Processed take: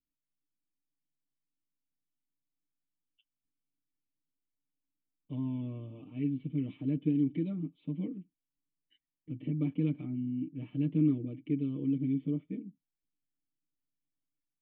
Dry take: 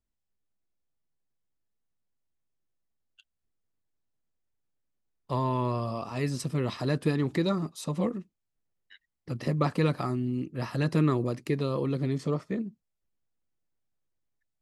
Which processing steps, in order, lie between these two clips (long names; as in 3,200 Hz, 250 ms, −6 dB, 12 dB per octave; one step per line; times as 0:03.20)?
formant resonators in series i
comb filter 6.6 ms, depth 74%